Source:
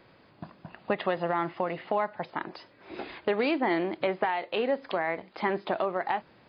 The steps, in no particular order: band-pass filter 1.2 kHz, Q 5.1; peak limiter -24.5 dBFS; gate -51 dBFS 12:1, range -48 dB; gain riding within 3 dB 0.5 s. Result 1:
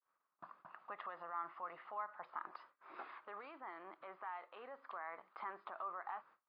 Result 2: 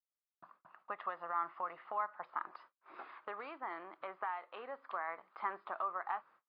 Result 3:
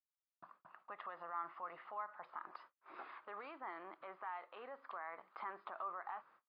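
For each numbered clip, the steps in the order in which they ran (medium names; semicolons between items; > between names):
peak limiter > gain riding > gate > band-pass filter; gate > gain riding > band-pass filter > peak limiter; gate > gain riding > peak limiter > band-pass filter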